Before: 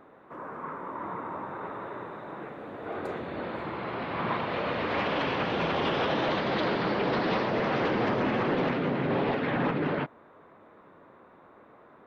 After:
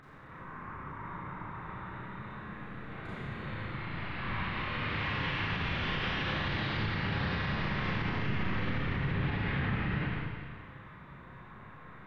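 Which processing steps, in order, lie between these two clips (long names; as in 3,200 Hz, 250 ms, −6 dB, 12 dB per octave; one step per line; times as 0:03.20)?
sub-octave generator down 1 octave, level 0 dB
drawn EQ curve 140 Hz 0 dB, 610 Hz −16 dB, 1,900 Hz +1 dB
on a send: flutter between parallel walls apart 6.6 metres, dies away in 0.2 s
on the sum: upward compression, threshold −39 dBFS
low-pass filter 3,000 Hz 6 dB per octave
parametric band 250 Hz −3 dB 1.1 octaves
four-comb reverb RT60 1.9 s, combs from 29 ms, DRR −8.5 dB
brickwall limiter −15 dBFS, peak gain reduction 5.5 dB
level −8 dB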